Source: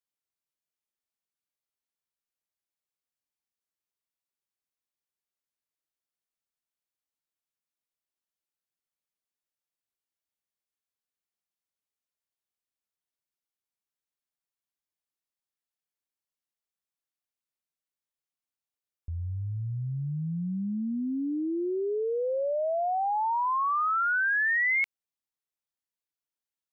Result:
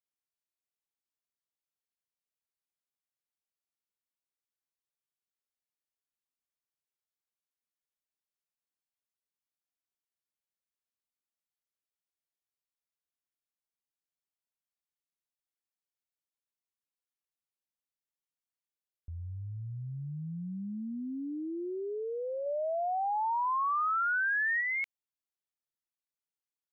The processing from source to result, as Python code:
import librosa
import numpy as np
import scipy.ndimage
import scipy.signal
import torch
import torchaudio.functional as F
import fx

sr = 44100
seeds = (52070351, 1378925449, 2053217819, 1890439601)

y = fx.peak_eq(x, sr, hz=1100.0, db=4.0, octaves=2.3, at=(22.46, 24.61))
y = F.gain(torch.from_numpy(y), -7.0).numpy()